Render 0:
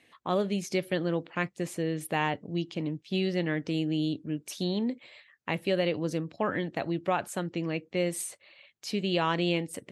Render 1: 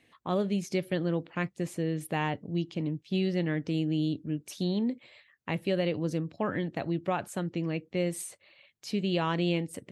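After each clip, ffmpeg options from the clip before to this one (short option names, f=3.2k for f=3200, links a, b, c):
-af "lowshelf=f=250:g=8,volume=-3.5dB"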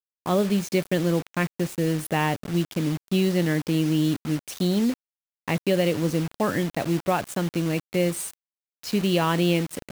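-af "acrusher=bits=6:mix=0:aa=0.000001,volume=6.5dB"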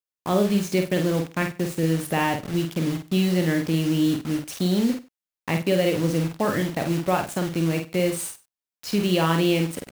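-filter_complex "[0:a]asplit=2[a][b];[b]adelay=49,volume=-5.5dB[c];[a][c]amix=inputs=2:normalize=0,aecho=1:1:97:0.1"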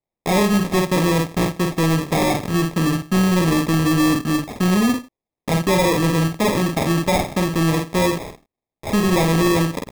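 -af "aresample=16000,asoftclip=type=tanh:threshold=-20dB,aresample=44100,acrusher=samples=30:mix=1:aa=0.000001,volume=8dB"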